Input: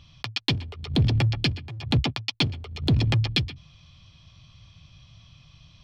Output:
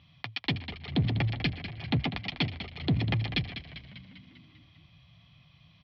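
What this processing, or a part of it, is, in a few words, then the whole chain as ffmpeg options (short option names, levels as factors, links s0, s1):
frequency-shifting delay pedal into a guitar cabinet: -filter_complex "[0:a]asplit=8[s0][s1][s2][s3][s4][s5][s6][s7];[s1]adelay=198,afreqshift=-60,volume=0.299[s8];[s2]adelay=396,afreqshift=-120,volume=0.17[s9];[s3]adelay=594,afreqshift=-180,volume=0.0966[s10];[s4]adelay=792,afreqshift=-240,volume=0.0556[s11];[s5]adelay=990,afreqshift=-300,volume=0.0316[s12];[s6]adelay=1188,afreqshift=-360,volume=0.018[s13];[s7]adelay=1386,afreqshift=-420,volume=0.0102[s14];[s0][s8][s9][s10][s11][s12][s13][s14]amix=inputs=8:normalize=0,highpass=82,equalizer=f=170:t=q:w=4:g=5,equalizer=f=260:t=q:w=4:g=3,equalizer=f=730:t=q:w=4:g=5,equalizer=f=2000:t=q:w=4:g=8,lowpass=f=4200:w=0.5412,lowpass=f=4200:w=1.3066,volume=0.473"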